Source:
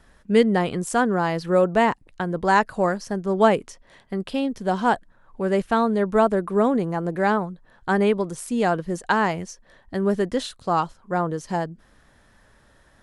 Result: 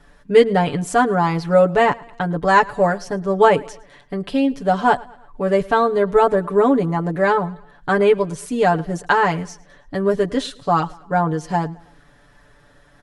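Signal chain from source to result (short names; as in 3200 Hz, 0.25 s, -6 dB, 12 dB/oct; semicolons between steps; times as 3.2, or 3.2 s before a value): high shelf 6400 Hz -6.5 dB; comb 6.9 ms, depth 96%; feedback echo 0.109 s, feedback 47%, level -23 dB; gain +2 dB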